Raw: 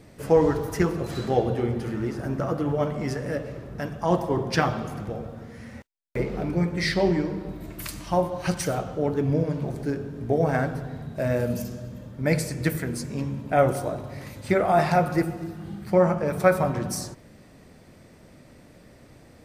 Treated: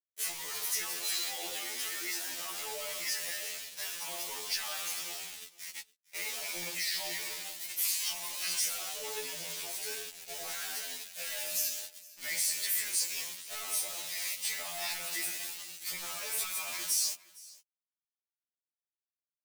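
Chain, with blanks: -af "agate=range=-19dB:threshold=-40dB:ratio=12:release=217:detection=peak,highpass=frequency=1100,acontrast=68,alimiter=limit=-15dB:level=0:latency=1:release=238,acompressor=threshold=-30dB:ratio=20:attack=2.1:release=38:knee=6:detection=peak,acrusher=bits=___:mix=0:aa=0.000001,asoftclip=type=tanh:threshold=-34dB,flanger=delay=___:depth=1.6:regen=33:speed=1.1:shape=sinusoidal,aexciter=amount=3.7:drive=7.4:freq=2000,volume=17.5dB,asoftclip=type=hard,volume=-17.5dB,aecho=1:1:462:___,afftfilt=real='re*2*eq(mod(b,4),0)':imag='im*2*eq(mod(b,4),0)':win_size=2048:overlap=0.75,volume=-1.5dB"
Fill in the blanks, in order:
6, 4.5, 0.0841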